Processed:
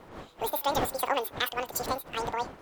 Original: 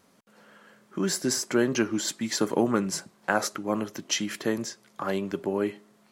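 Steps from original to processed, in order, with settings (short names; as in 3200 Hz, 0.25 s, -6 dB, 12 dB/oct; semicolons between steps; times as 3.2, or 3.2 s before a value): wind noise 370 Hz -37 dBFS; reverse echo 83 ms -23 dB; speed mistake 33 rpm record played at 78 rpm; gain -3.5 dB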